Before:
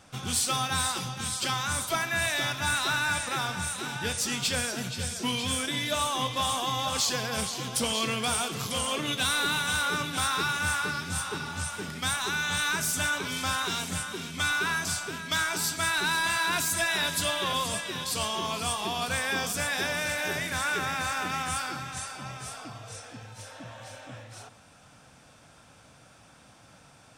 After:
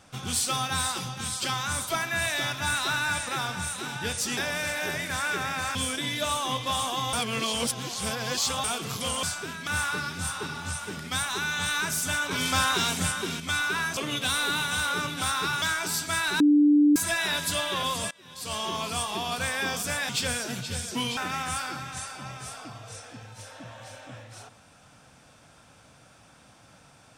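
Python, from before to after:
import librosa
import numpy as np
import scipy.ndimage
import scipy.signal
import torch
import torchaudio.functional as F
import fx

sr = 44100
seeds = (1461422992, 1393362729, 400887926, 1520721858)

y = fx.edit(x, sr, fx.swap(start_s=4.37, length_s=1.08, other_s=19.79, other_length_s=1.38),
    fx.reverse_span(start_s=6.83, length_s=1.51),
    fx.swap(start_s=8.93, length_s=1.65, other_s=14.88, other_length_s=0.44),
    fx.clip_gain(start_s=13.22, length_s=1.09, db=5.0),
    fx.bleep(start_s=16.1, length_s=0.56, hz=294.0, db=-15.0),
    fx.fade_in_from(start_s=17.81, length_s=0.49, curve='qua', floor_db=-21.5), tone=tone)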